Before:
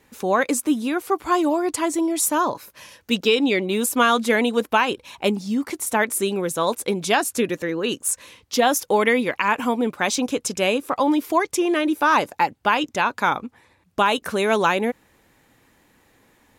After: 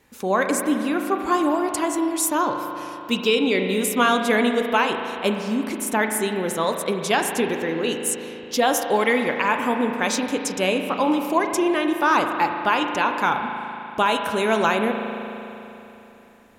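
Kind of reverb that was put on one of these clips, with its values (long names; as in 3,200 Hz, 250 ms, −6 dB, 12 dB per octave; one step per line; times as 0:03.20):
spring reverb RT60 3.2 s, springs 37 ms, chirp 35 ms, DRR 4.5 dB
level −1.5 dB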